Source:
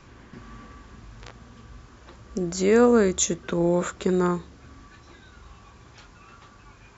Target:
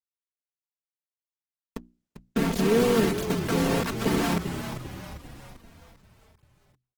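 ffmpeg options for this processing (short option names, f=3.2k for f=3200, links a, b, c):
-filter_complex "[0:a]acompressor=threshold=-26dB:ratio=6,afwtdn=0.00891,lowpass=3.2k,lowshelf=f=110:g=5.5,asplit=4[a][b][c][d];[b]asetrate=35002,aresample=44100,atempo=1.25992,volume=-5dB[e];[c]asetrate=37084,aresample=44100,atempo=1.18921,volume=-13dB[f];[d]asetrate=52444,aresample=44100,atempo=0.840896,volume=-12dB[g];[a][e][f][g]amix=inputs=4:normalize=0,asoftclip=type=tanh:threshold=-19.5dB,acrusher=bits=4:mix=0:aa=0.000001,equalizer=f=270:t=o:w=1.3:g=4.5,bandreject=f=60:t=h:w=6,bandreject=f=120:t=h:w=6,bandreject=f=180:t=h:w=6,bandreject=f=240:t=h:w=6,bandreject=f=300:t=h:w=6,bandreject=f=360:t=h:w=6,aecho=1:1:4.4:0.91,asplit=7[h][i][j][k][l][m][n];[i]adelay=395,afreqshift=-51,volume=-9dB[o];[j]adelay=790,afreqshift=-102,volume=-14.8dB[p];[k]adelay=1185,afreqshift=-153,volume=-20.7dB[q];[l]adelay=1580,afreqshift=-204,volume=-26.5dB[r];[m]adelay=1975,afreqshift=-255,volume=-32.4dB[s];[n]adelay=2370,afreqshift=-306,volume=-38.2dB[t];[h][o][p][q][r][s][t]amix=inputs=7:normalize=0" -ar 48000 -c:a libopus -b:a 16k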